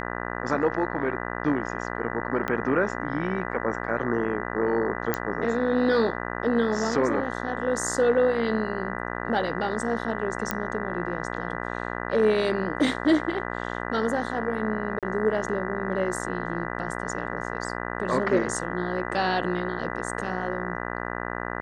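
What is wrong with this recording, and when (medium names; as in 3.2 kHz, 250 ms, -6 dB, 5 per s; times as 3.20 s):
buzz 60 Hz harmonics 33 -32 dBFS
2.48 s: pop -15 dBFS
5.14 s: pop -10 dBFS
10.51 s: pop -9 dBFS
14.99–15.03 s: dropout 37 ms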